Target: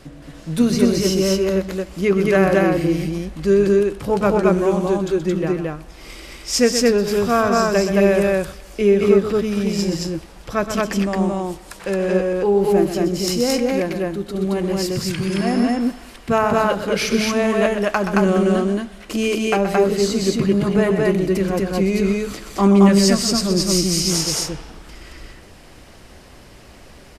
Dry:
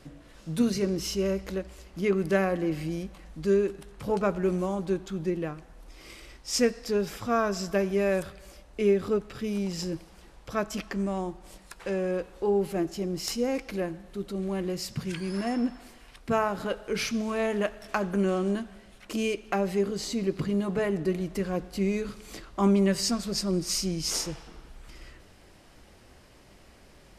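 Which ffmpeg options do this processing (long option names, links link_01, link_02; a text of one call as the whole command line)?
ffmpeg -i in.wav -af "aecho=1:1:125.4|221.6:0.355|0.891,volume=8dB" out.wav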